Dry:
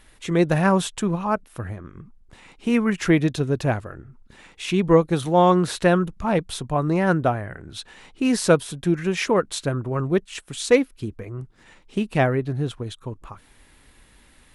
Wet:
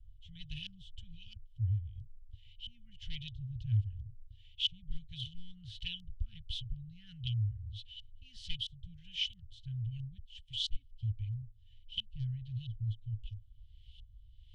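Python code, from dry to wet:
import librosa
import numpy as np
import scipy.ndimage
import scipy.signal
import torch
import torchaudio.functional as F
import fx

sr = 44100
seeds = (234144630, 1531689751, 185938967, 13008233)

y = np.minimum(x, 2.0 * 10.0 ** (-11.5 / 20.0) - x)
y = fx.high_shelf(y, sr, hz=3500.0, db=-10.0)
y = fx.filter_lfo_lowpass(y, sr, shape='saw_up', hz=1.5, low_hz=600.0, high_hz=3200.0, q=2.8)
y = scipy.signal.sosfilt(scipy.signal.cheby1(5, 1.0, [110.0, 3200.0], 'bandstop', fs=sr, output='sos'), y)
y = fx.small_body(y, sr, hz=(370.0, 3000.0), ring_ms=25, db=12)
y = y * 10.0 ** (2.0 / 20.0)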